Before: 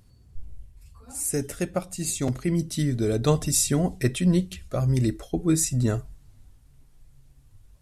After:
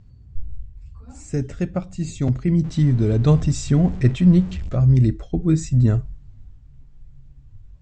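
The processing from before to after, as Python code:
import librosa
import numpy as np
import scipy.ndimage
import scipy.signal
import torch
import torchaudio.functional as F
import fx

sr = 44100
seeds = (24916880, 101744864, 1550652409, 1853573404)

y = fx.zero_step(x, sr, step_db=-34.5, at=(2.64, 4.75))
y = scipy.signal.sosfilt(scipy.signal.butter(12, 7900.0, 'lowpass', fs=sr, output='sos'), y)
y = fx.bass_treble(y, sr, bass_db=11, treble_db=-8)
y = F.gain(torch.from_numpy(y), -1.5).numpy()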